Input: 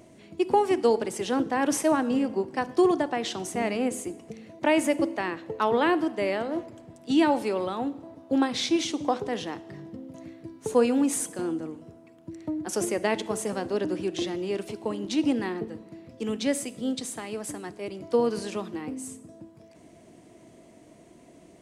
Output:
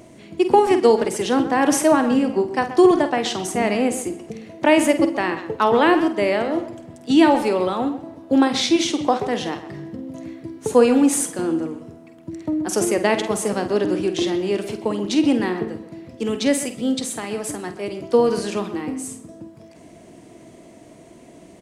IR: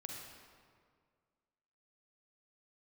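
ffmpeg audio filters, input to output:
-filter_complex "[0:a]asplit=2[a][b];[b]adelay=49,volume=-10.5dB[c];[a][c]amix=inputs=2:normalize=0,asplit=2[d][e];[e]adelay=130,highpass=300,lowpass=3.4k,asoftclip=type=hard:threshold=-17.5dB,volume=-12dB[f];[d][f]amix=inputs=2:normalize=0,volume=7dB"

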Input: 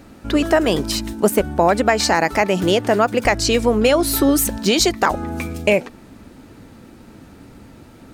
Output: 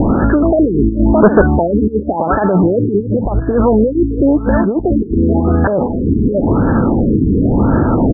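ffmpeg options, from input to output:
-filter_complex "[0:a]asplit=2[a][b];[b]aecho=0:1:617:0.119[c];[a][c]amix=inputs=2:normalize=0,acompressor=mode=upward:threshold=-18dB:ratio=2.5,adynamicequalizer=threshold=0.0251:dfrequency=2200:dqfactor=0.82:tfrequency=2200:tqfactor=0.82:attack=5:release=100:ratio=0.375:range=3:mode=boostabove:tftype=bell,asettb=1/sr,asplit=3[d][e][f];[d]atrim=end=0.984[g];[e]atrim=start=0.98:end=1.56,asetpts=PTS-STARTPTS,afade=t=in:d=0.004:c=qsin,afade=t=out:st=0.576:d=0.004:c=qsin,asoftclip=type=hard:threshold=-18dB[h];[f]atrim=start=1.556[i];[g][h]acrossfade=d=0.004:c1=hsin:c2=qsin[j];[j][i]acrossfade=d=0.004:c1=qsin:c2=hsin,asettb=1/sr,asplit=3[k][l][m];[k]atrim=end=3.004[n];[l]atrim=start=3:end=3.42,asetpts=PTS-STARTPTS,afade=t=in:d=0.004:c=qsin,afade=t=out:st=0.416:d=0.004:c=qsin,acrossover=split=140|3000[o][p][q];[p]acompressor=threshold=-24dB:ratio=6[r];[o][r][q]amix=inputs=3:normalize=0[s];[m]atrim=start=3.416[t];[n][s]acrossfade=d=0.004:c1=hsin:c2=qsin[u];[u][t]acrossfade=d=0.004:c1=qsin:c2=hsin,alimiter=level_in=23.5dB:limit=-1dB:release=50:level=0:latency=1,afftfilt=real='re*lt(b*sr/1024,440*pow(1800/440,0.5+0.5*sin(2*PI*0.93*pts/sr)))':imag='im*lt(b*sr/1024,440*pow(1800/440,0.5+0.5*sin(2*PI*0.93*pts/sr)))':win_size=1024:overlap=0.75,volume=-2dB"

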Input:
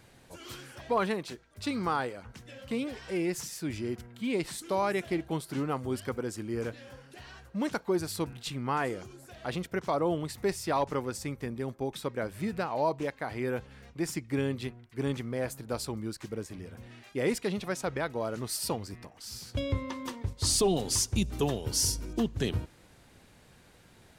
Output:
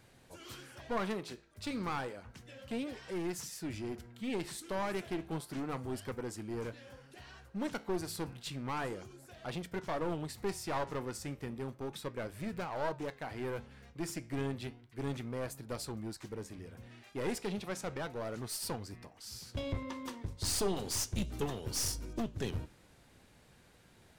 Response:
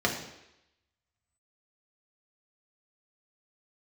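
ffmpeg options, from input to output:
-af "aeval=exprs='clip(val(0),-1,0.0237)':c=same,flanger=delay=7.6:depth=8.6:regen=-80:speed=0.32:shape=sinusoidal"

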